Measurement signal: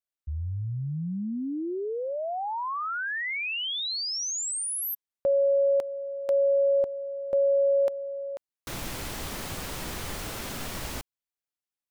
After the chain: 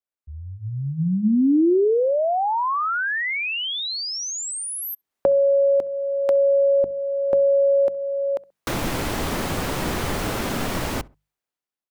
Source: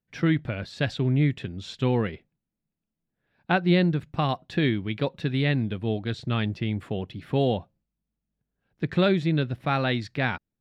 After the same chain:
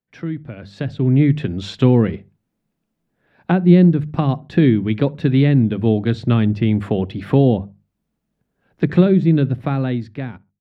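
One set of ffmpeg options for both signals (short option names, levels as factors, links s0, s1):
-filter_complex "[0:a]lowshelf=f=150:g=-8.5,acrossover=split=330[s0][s1];[s1]acompressor=threshold=0.0158:ratio=10:attack=9.5:release=983:knee=2.83:detection=peak[s2];[s0][s2]amix=inputs=2:normalize=0,highshelf=f=2300:g=-9,bandreject=f=50:t=h:w=6,bandreject=f=100:t=h:w=6,bandreject=f=150:t=h:w=6,bandreject=f=200:t=h:w=6,asplit=2[s3][s4];[s4]adelay=66,lowpass=f=1400:p=1,volume=0.075,asplit=2[s5][s6];[s6]adelay=66,lowpass=f=1400:p=1,volume=0.35[s7];[s3][s5][s7]amix=inputs=3:normalize=0,dynaudnorm=f=150:g=13:m=5.62,volume=1.26"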